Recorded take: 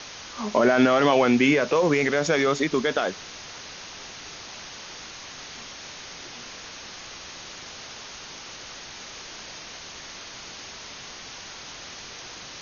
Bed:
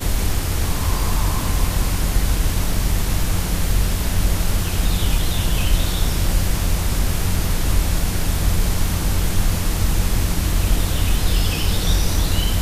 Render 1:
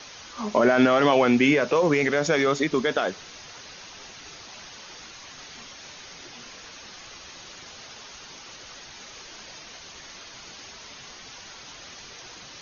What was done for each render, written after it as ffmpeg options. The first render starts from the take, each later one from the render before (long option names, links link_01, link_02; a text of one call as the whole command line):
ffmpeg -i in.wav -af "afftdn=noise_reduction=6:noise_floor=-41" out.wav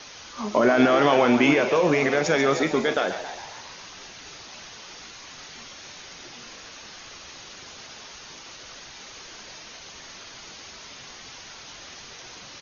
ffmpeg -i in.wav -filter_complex "[0:a]asplit=2[link_01][link_02];[link_02]adelay=44,volume=-13dB[link_03];[link_01][link_03]amix=inputs=2:normalize=0,asplit=2[link_04][link_05];[link_05]asplit=7[link_06][link_07][link_08][link_09][link_10][link_11][link_12];[link_06]adelay=136,afreqshift=84,volume=-11dB[link_13];[link_07]adelay=272,afreqshift=168,volume=-15.2dB[link_14];[link_08]adelay=408,afreqshift=252,volume=-19.3dB[link_15];[link_09]adelay=544,afreqshift=336,volume=-23.5dB[link_16];[link_10]adelay=680,afreqshift=420,volume=-27.6dB[link_17];[link_11]adelay=816,afreqshift=504,volume=-31.8dB[link_18];[link_12]adelay=952,afreqshift=588,volume=-35.9dB[link_19];[link_13][link_14][link_15][link_16][link_17][link_18][link_19]amix=inputs=7:normalize=0[link_20];[link_04][link_20]amix=inputs=2:normalize=0" out.wav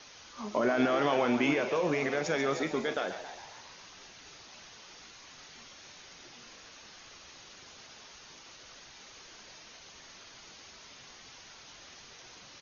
ffmpeg -i in.wav -af "volume=-9dB" out.wav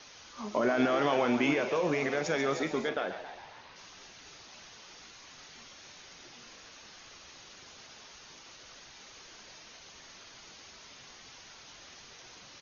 ffmpeg -i in.wav -filter_complex "[0:a]asettb=1/sr,asplit=3[link_01][link_02][link_03];[link_01]atrim=end=2.894[link_04];[link_02]atrim=start=2.89:end=3.76,asetpts=PTS-STARTPTS,afade=type=in:duration=0.004:curve=qsin,afade=type=out:start_time=0.866:duration=0.004:curve=qsin,lowpass=3500[link_05];[link_03]atrim=start=3.756[link_06];[link_04][link_05]acrossfade=duration=0.004:curve1=hsin:curve2=qsin[link_07];[link_07][link_06]acrossfade=duration=0.004:curve1=qsin:curve2=hsin" out.wav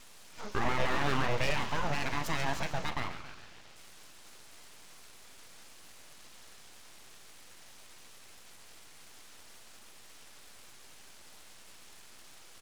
ffmpeg -i in.wav -af "aeval=exprs='abs(val(0))':channel_layout=same" out.wav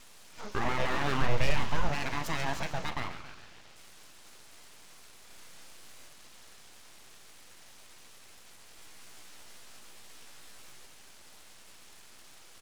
ffmpeg -i in.wav -filter_complex "[0:a]asettb=1/sr,asplit=3[link_01][link_02][link_03];[link_01]atrim=end=1.214[link_04];[link_02]atrim=start=1.21:end=1.89,asetpts=PTS-STARTPTS,afade=type=in:duration=0.004:curve=qsin,afade=type=out:start_time=0.676:duration=0.004:curve=qsin,lowshelf=frequency=110:gain=10[link_05];[link_03]atrim=start=1.886[link_06];[link_04][link_05]acrossfade=duration=0.004:curve1=hsin:curve2=qsin[link_07];[link_07][link_06]acrossfade=duration=0.004:curve1=qsin:curve2=hsin,asettb=1/sr,asplit=3[link_08][link_09][link_10];[link_08]atrim=end=5.274[link_11];[link_09]atrim=start=5.27:end=6.08,asetpts=PTS-STARTPTS,afade=type=in:duration=0.004:curve=qsin,afade=type=out:start_time=0.806:duration=0.004:curve=qsin,asplit=2[link_12][link_13];[link_13]adelay=32,volume=-4dB[link_14];[link_12][link_14]amix=inputs=2:normalize=0,atrim=end_sample=35721[link_15];[link_10]atrim=start=6.076[link_16];[link_11][link_15]acrossfade=duration=0.004:curve1=hsin:curve2=qsin[link_17];[link_17][link_16]acrossfade=duration=0.004:curve1=qsin:curve2=hsin,asettb=1/sr,asplit=3[link_18][link_19][link_20];[link_18]atrim=end=8.774[link_21];[link_19]atrim=start=8.77:end=10.86,asetpts=PTS-STARTPTS,afade=type=in:duration=0.004:curve=qsin,afade=type=out:start_time=2.086:duration=0.004:curve=qsin,asplit=2[link_22][link_23];[link_23]adelay=16,volume=-3dB[link_24];[link_22][link_24]amix=inputs=2:normalize=0,atrim=end_sample=92169[link_25];[link_20]atrim=start=10.856[link_26];[link_21][link_25]acrossfade=duration=0.004:curve1=hsin:curve2=qsin[link_27];[link_27][link_26]acrossfade=duration=0.004:curve1=qsin:curve2=hsin" out.wav